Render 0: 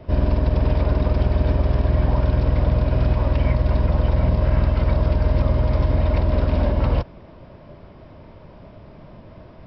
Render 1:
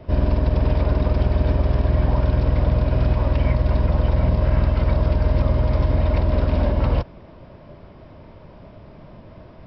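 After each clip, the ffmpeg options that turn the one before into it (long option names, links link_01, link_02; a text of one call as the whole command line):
ffmpeg -i in.wav -af anull out.wav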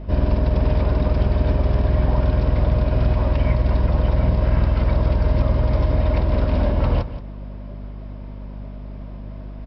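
ffmpeg -i in.wav -af "aeval=exprs='val(0)+0.0251*(sin(2*PI*50*n/s)+sin(2*PI*2*50*n/s)/2+sin(2*PI*3*50*n/s)/3+sin(2*PI*4*50*n/s)/4+sin(2*PI*5*50*n/s)/5)':channel_layout=same,aecho=1:1:176:0.211" out.wav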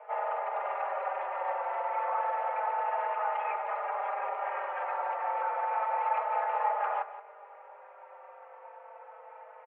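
ffmpeg -i in.wav -filter_complex "[0:a]highpass=frequency=320:width_type=q:width=0.5412,highpass=frequency=320:width_type=q:width=1.307,lowpass=frequency=2100:width_type=q:width=0.5176,lowpass=frequency=2100:width_type=q:width=0.7071,lowpass=frequency=2100:width_type=q:width=1.932,afreqshift=270,asplit=2[link_01][link_02];[link_02]adelay=4.3,afreqshift=-0.3[link_03];[link_01][link_03]amix=inputs=2:normalize=1" out.wav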